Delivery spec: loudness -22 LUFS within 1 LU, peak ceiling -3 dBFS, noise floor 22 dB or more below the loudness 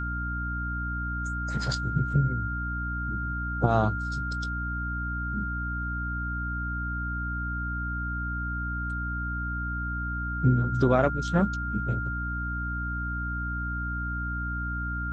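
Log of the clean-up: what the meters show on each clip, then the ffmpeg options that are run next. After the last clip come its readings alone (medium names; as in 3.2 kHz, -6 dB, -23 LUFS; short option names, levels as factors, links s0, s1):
hum 60 Hz; highest harmonic 300 Hz; hum level -30 dBFS; steady tone 1.4 kHz; tone level -32 dBFS; loudness -29.5 LUFS; peak level -6.5 dBFS; loudness target -22.0 LUFS
-> -af "bandreject=f=60:t=h:w=6,bandreject=f=120:t=h:w=6,bandreject=f=180:t=h:w=6,bandreject=f=240:t=h:w=6,bandreject=f=300:t=h:w=6"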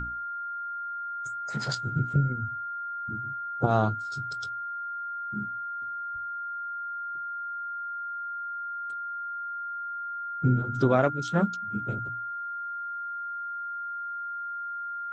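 hum not found; steady tone 1.4 kHz; tone level -32 dBFS
-> -af "bandreject=f=1400:w=30"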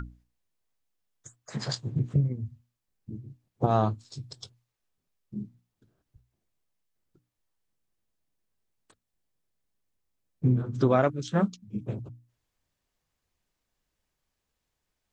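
steady tone not found; loudness -28.5 LUFS; peak level -8.5 dBFS; loudness target -22.0 LUFS
-> -af "volume=2.11,alimiter=limit=0.708:level=0:latency=1"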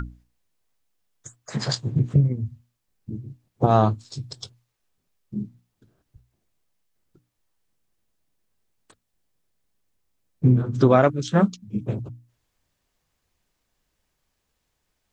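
loudness -22.5 LUFS; peak level -3.0 dBFS; noise floor -77 dBFS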